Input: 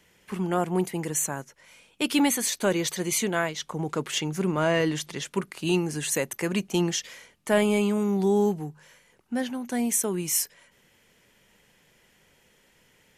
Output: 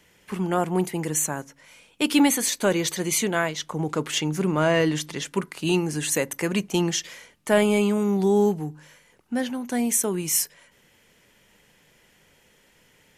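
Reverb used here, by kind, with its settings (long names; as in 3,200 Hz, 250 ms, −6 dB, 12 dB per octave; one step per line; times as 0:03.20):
feedback delay network reverb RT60 0.34 s, low-frequency decay 1.4×, high-frequency decay 0.5×, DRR 20 dB
level +2.5 dB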